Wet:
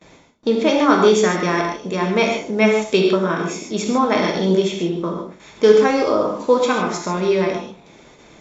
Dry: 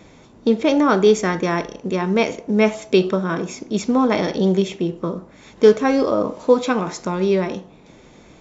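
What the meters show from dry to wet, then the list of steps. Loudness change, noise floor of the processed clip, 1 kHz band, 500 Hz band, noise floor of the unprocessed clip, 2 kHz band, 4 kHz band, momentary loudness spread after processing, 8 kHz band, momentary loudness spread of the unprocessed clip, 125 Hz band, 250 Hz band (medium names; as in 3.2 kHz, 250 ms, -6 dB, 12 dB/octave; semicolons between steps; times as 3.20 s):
+1.5 dB, -48 dBFS, +3.5 dB, +1.5 dB, -48 dBFS, +3.5 dB, +4.0 dB, 11 LU, no reading, 10 LU, -0.5 dB, -0.5 dB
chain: gate with hold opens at -37 dBFS; bass shelf 320 Hz -7.5 dB; gated-style reverb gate 170 ms flat, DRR 1 dB; trim +1.5 dB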